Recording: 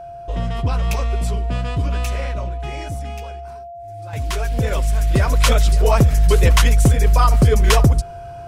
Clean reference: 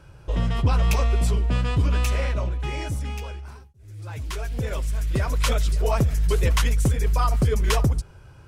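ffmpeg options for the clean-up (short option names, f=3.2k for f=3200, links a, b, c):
-af "bandreject=f=690:w=30,asetnsamples=n=441:p=0,asendcmd='4.13 volume volume -7.5dB',volume=0dB"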